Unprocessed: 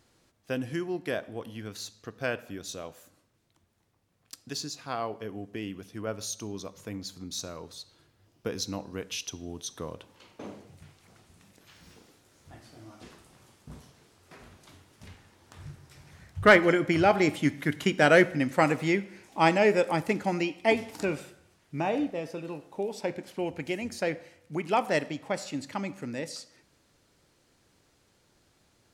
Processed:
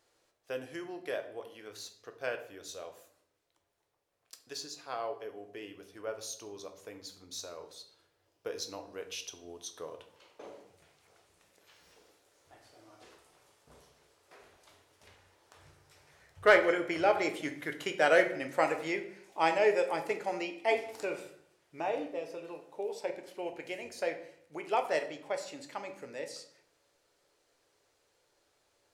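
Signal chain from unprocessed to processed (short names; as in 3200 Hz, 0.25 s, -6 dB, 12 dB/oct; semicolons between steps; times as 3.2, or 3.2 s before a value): resonant low shelf 310 Hz -12 dB, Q 1.5; shoebox room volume 70 m³, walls mixed, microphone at 0.37 m; gain -6.5 dB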